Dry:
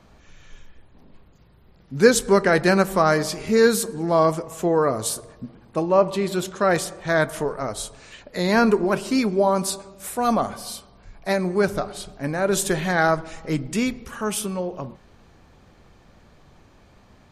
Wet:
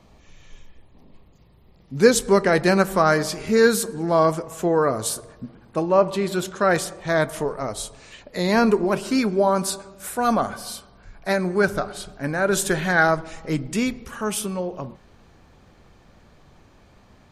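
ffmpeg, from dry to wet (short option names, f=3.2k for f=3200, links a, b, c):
-af "asetnsamples=n=441:p=0,asendcmd='1.97 equalizer g -3.5;2.8 equalizer g 3.5;6.93 equalizer g -3.5;9.03 equalizer g 7;13.04 equalizer g 0',equalizer=f=1.5k:t=o:w=0.3:g=-10"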